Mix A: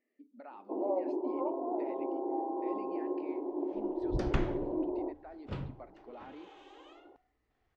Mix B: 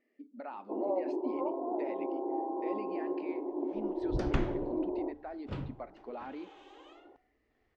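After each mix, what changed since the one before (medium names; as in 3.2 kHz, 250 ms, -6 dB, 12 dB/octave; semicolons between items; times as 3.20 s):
speech +6.5 dB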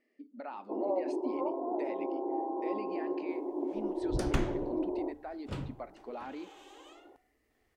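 master: remove distance through air 160 m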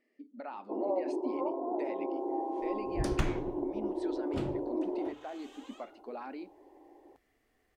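second sound: entry -1.15 s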